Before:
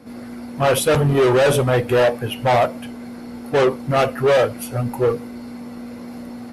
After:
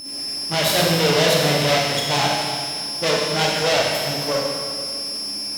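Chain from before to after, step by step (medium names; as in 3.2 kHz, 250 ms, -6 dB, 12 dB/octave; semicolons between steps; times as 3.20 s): frequency weighting D; whistle 4.5 kHz -24 dBFS; bass shelf 230 Hz +10 dB; half-wave rectifier; tape speed +17%; high-pass 89 Hz 12 dB/octave; Schroeder reverb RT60 2 s, combs from 30 ms, DRR -2 dB; trim -3.5 dB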